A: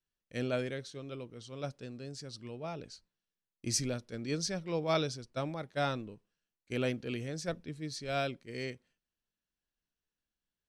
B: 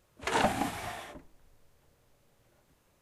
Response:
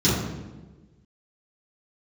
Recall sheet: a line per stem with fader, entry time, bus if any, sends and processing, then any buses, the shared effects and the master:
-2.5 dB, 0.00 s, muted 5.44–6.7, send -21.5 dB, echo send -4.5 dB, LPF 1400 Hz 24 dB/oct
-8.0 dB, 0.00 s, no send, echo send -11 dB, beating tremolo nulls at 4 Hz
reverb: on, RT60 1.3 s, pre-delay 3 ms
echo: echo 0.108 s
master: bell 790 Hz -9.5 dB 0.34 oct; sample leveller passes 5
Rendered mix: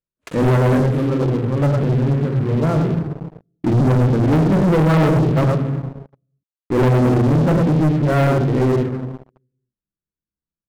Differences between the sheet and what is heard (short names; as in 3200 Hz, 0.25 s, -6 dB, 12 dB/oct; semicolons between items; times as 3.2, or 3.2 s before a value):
stem A -2.5 dB -> +4.0 dB; stem B -8.0 dB -> -18.0 dB